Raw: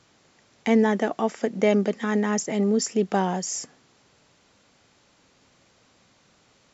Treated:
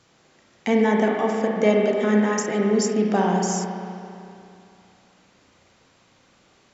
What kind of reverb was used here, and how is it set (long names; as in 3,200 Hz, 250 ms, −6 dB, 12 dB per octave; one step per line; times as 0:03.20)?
spring reverb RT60 2.6 s, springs 33/56 ms, chirp 55 ms, DRR −0.5 dB